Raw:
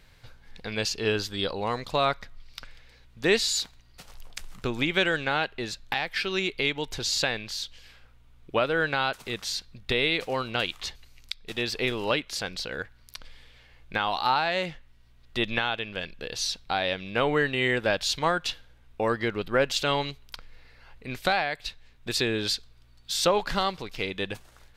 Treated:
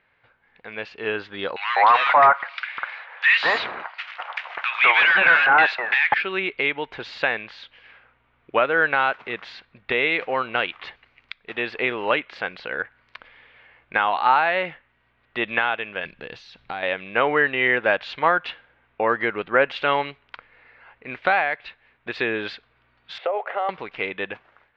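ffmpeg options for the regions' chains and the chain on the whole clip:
-filter_complex "[0:a]asettb=1/sr,asplit=3[a][b][c];[a]atrim=end=1.564[d];[b]atrim=start=1.56:end=6.14,asetpts=PTS-STARTPTS,afade=t=in:d=0.004:c=qsin,afade=t=out:st=4.576:d=0.004:c=qsin,highpass=f=680:w=0.5412,highpass=f=680:w=1.3066,asplit=2[e][f];[f]highpass=f=720:p=1,volume=27dB,asoftclip=type=tanh:threshold=-10dB[g];[e][g]amix=inputs=2:normalize=0,lowpass=f=3.5k:p=1,volume=-6dB,acrossover=split=1600[h][i];[h]adelay=200[j];[j][i]amix=inputs=2:normalize=0,atrim=end_sample=201978[k];[c]atrim=start=6.136[l];[d][k]acrossfade=d=0.004:c1=hsin:c2=qsin[m];[m][l]acrossfade=d=0.004:c1=qsin:c2=hsin,asettb=1/sr,asplit=3[n][o][p];[n]atrim=end=16.054[q];[o]atrim=start=16.05:end=16.83,asetpts=PTS-STARTPTS,afade=t=in:d=0.004:c=qsin,afade=t=out:st=0.776:d=0.004:c=qsin,bass=f=250:g=10,treble=f=4k:g=11,acompressor=threshold=-32dB:ratio=4:attack=3.2:release=140:knee=1:detection=peak[r];[p]atrim=start=16.826[s];[q][r]acrossfade=d=0.004:c1=hsin:c2=qsin[t];[t][s]acrossfade=d=0.004:c1=qsin:c2=hsin,asettb=1/sr,asplit=3[u][v][w];[u]atrim=end=23.184[x];[v]atrim=start=23.18:end=23.69,asetpts=PTS-STARTPTS,afade=t=in:d=0.004:c=qsin,afade=t=out:st=0.506:d=0.004:c=qsin,highpass=f=440:w=0.5412,highpass=f=440:w=1.3066,equalizer=f=470:t=q:w=4:g=7,equalizer=f=690:t=q:w=4:g=9,equalizer=f=1k:t=q:w=4:g=-8,equalizer=f=1.6k:t=q:w=4:g=-9,equalizer=f=2.5k:t=q:w=4:g=-4,lowpass=f=2.6k:w=0.5412,lowpass=f=2.6k:w=1.3066,acompressor=threshold=-27dB:ratio=4:attack=3.2:release=140:knee=1:detection=peak[y];[w]atrim=start=23.686[z];[x][y]acrossfade=d=0.004:c1=hsin:c2=qsin[aa];[aa][z]acrossfade=d=0.004:c1=qsin:c2=hsin,highpass=f=770:p=1,dynaudnorm=f=440:g=5:m=10.5dB,lowpass=f=2.4k:w=0.5412,lowpass=f=2.4k:w=1.3066"

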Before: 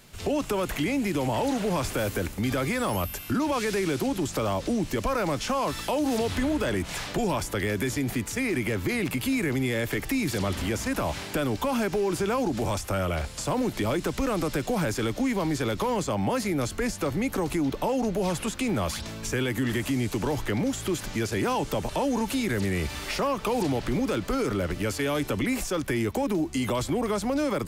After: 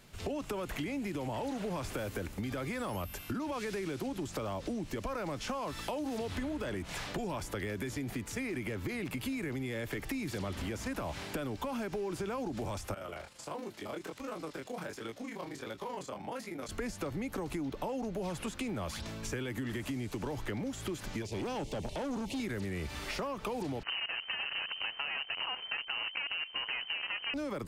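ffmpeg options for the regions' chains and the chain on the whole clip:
-filter_complex "[0:a]asettb=1/sr,asplit=3[a][b][c];[a]atrim=end=12.944[d];[b]atrim=start=12.94:end=16.69,asetpts=PTS-STARTPTS,afade=t=in:d=0.004:c=qsin,afade=t=out:st=3.746:d=0.004:c=qsin,highpass=f=380:p=1,tremolo=f=26:d=0.889,flanger=delay=17.5:depth=6.3:speed=1.4[e];[c]atrim=start=16.686[f];[d][e]acrossfade=d=0.004:c1=hsin:c2=qsin[g];[g][f]acrossfade=d=0.004:c1=qsin:c2=hsin,asettb=1/sr,asplit=3[h][i][j];[h]atrim=end=21.224[k];[i]atrim=start=21.22:end=22.4,asetpts=PTS-STARTPTS,afade=t=in:d=0.004:c=qsin,afade=t=out:st=1.176:d=0.004:c=qsin,acrossover=split=9000[l][m];[m]acompressor=threshold=-55dB:ratio=4:attack=1:release=60[n];[l][n]amix=inputs=2:normalize=0,asuperstop=centerf=1400:order=4:qfactor=0.94,asoftclip=type=hard:threshold=-27dB[o];[j]atrim=start=22.396[p];[k][o]acrossfade=d=0.004:c1=hsin:c2=qsin[q];[q][p]acrossfade=d=0.004:c1=qsin:c2=hsin,asettb=1/sr,asplit=3[r][s][t];[r]atrim=end=23.834[u];[s]atrim=start=23.83:end=27.34,asetpts=PTS-STARTPTS,afade=t=in:d=0.004:c=qsin,afade=t=out:st=3.506:d=0.004:c=qsin,acrusher=bits=5:dc=4:mix=0:aa=0.000001,lowpass=f=2.6k:t=q:w=0.5098,lowpass=f=2.6k:t=q:w=0.6013,lowpass=f=2.6k:t=q:w=0.9,lowpass=f=2.6k:t=q:w=2.563,afreqshift=-3100[v];[t]atrim=start=27.336[w];[u][v]acrossfade=d=0.004:c1=hsin:c2=qsin[x];[x][w]acrossfade=d=0.004:c1=qsin:c2=hsin,highshelf=f=5k:g=-5,acompressor=threshold=-29dB:ratio=6,volume=-4.5dB"

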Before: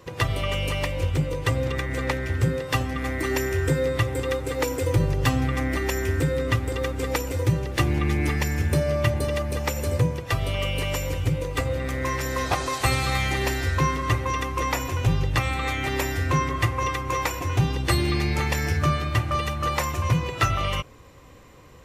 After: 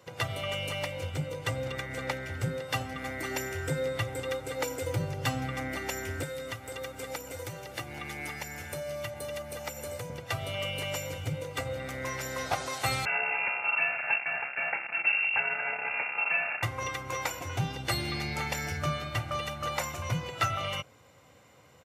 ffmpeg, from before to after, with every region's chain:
-filter_complex "[0:a]asettb=1/sr,asplit=3[a][b][c];[a]atrim=end=6.234[d];[b]atrim=start=6.23:end=10.1,asetpts=PTS-STARTPTS,afade=t=in:d=0.004:c=qsin,afade=t=out:st=3.866:d=0.004:c=qsin,acrossover=split=420|2700[e][f][g];[e]acompressor=threshold=-33dB:ratio=4[h];[f]acompressor=threshold=-32dB:ratio=4[i];[g]acompressor=threshold=-43dB:ratio=4[j];[h][i][j]amix=inputs=3:normalize=0,highshelf=f=6.3k:g=8[k];[c]atrim=start=10.096[l];[d][k]acrossfade=d=0.004:c1=hsin:c2=qsin[m];[m][l]acrossfade=d=0.004:c1=qsin:c2=hsin,asettb=1/sr,asplit=3[n][o][p];[n]atrim=end=13.054[q];[o]atrim=start=13.05:end=16.63,asetpts=PTS-STARTPTS,afade=t=in:d=0.004:c=qsin,afade=t=out:st=3.576:d=0.004:c=qsin,acrusher=bits=3:mix=0:aa=0.5,lowpass=f=2.4k:t=q:w=0.5098,lowpass=f=2.4k:t=q:w=0.6013,lowpass=f=2.4k:t=q:w=0.9,lowpass=f=2.4k:t=q:w=2.563,afreqshift=-2800[r];[p]atrim=start=16.626[s];[q][r]acrossfade=d=0.004:c1=hsin:c2=qsin[t];[t][s]acrossfade=d=0.004:c1=qsin:c2=hsin,highpass=f=85:w=0.5412,highpass=f=85:w=1.3066,lowshelf=f=170:g=-8,aecho=1:1:1.4:0.42,volume=-6dB"

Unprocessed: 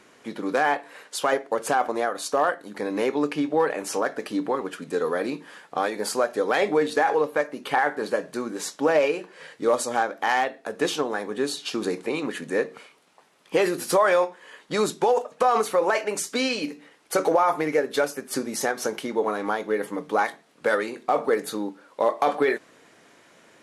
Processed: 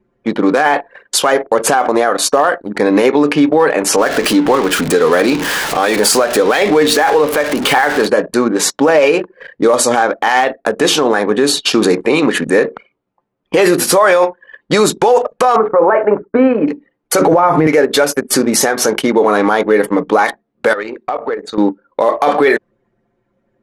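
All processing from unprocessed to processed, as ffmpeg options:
-filter_complex "[0:a]asettb=1/sr,asplit=3[a][b][c];[a]atrim=end=3.964[d];[b]atrim=start=3.96:end=8.06,asetpts=PTS-STARTPTS,afade=t=in:d=0.004:c=qsin,afade=t=out:st=4.096:d=0.004:c=qsin,aeval=exprs='val(0)+0.5*0.0211*sgn(val(0))':c=same,acompressor=threshold=-32dB:ratio=1.5:attack=3.2:release=140:knee=1:detection=peak,adynamicequalizer=threshold=0.0126:dfrequency=1800:dqfactor=0.7:tfrequency=1800:tqfactor=0.7:attack=5:release=100:ratio=0.375:range=2:mode=boostabove:tftype=highshelf[e];[c]atrim=start=8.056[f];[d][e]acrossfade=d=0.004:c1=hsin:c2=qsin[g];[g][f]acrossfade=d=0.004:c1=qsin:c2=hsin,asettb=1/sr,asplit=3[h][i][j];[h]atrim=end=15.564[k];[i]atrim=start=15.56:end=16.68,asetpts=PTS-STARTPTS,afade=t=in:d=0.004:c=qsin,afade=t=out:st=1.116:d=0.004:c=qsin,agate=range=-33dB:threshold=-35dB:ratio=3:release=100:detection=peak,lowpass=f=1.5k:w=0.5412,lowpass=f=1.5k:w=1.3066,bandreject=f=60:t=h:w=6,bandreject=f=120:t=h:w=6,bandreject=f=180:t=h:w=6,bandreject=f=240:t=h:w=6,bandreject=f=300:t=h:w=6,bandreject=f=360:t=h:w=6,bandreject=f=420:t=h:w=6,bandreject=f=480:t=h:w=6[l];[j]atrim=start=16.676[m];[k][l]acrossfade=d=0.004:c1=hsin:c2=qsin[n];[n][m]acrossfade=d=0.004:c1=qsin:c2=hsin,asettb=1/sr,asplit=3[o][p][q];[o]atrim=end=17.214[r];[p]atrim=start=17.21:end=17.67,asetpts=PTS-STARTPTS,afade=t=in:d=0.004:c=qsin,afade=t=out:st=0.456:d=0.004:c=qsin,acrossover=split=2600[s][t];[t]acompressor=threshold=-54dB:ratio=4:attack=1:release=60[u];[s][u]amix=inputs=2:normalize=0,equalizer=f=120:w=0.46:g=13.5[v];[q]atrim=start=17.666[w];[r][v]acrossfade=d=0.004:c1=hsin:c2=qsin[x];[x][w]acrossfade=d=0.004:c1=qsin:c2=hsin,asettb=1/sr,asplit=3[y][z][aa];[y]atrim=end=20.734[ab];[z]atrim=start=20.73:end=21.58,asetpts=PTS-STARTPTS,afade=t=in:d=0.004:c=qsin,afade=t=out:st=0.846:d=0.004:c=qsin,lowshelf=f=330:g=-8.5,acompressor=threshold=-36dB:ratio=3:attack=3.2:release=140:knee=1:detection=peak,lowpass=f=8k:w=0.5412,lowpass=f=8k:w=1.3066[ac];[aa]atrim=start=21.576[ad];[ab][ac]acrossfade=d=0.004:c1=hsin:c2=qsin[ae];[ae][ad]acrossfade=d=0.004:c1=qsin:c2=hsin,anlmdn=1,alimiter=level_in=19dB:limit=-1dB:release=50:level=0:latency=1,volume=-1dB"

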